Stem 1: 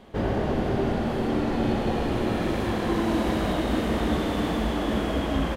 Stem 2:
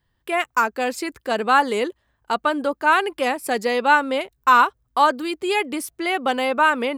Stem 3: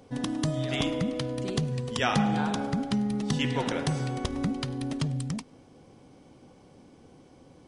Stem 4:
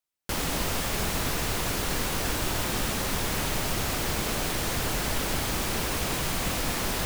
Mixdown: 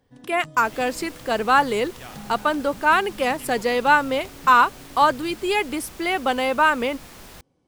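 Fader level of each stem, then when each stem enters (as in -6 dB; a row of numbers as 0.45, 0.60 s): off, -0.5 dB, -15.0 dB, -14.5 dB; off, 0.00 s, 0.00 s, 0.35 s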